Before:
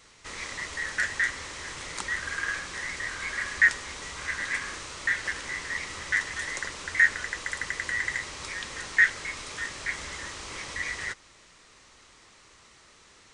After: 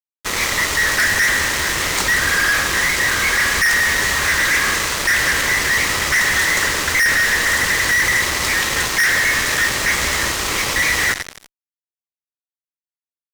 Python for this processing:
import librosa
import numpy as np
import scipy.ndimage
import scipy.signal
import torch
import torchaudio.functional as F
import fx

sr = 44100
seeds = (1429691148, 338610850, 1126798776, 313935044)

y = fx.rev_freeverb(x, sr, rt60_s=2.7, hf_ratio=0.8, predelay_ms=20, drr_db=8.5)
y = fx.fuzz(y, sr, gain_db=40.0, gate_db=-40.0)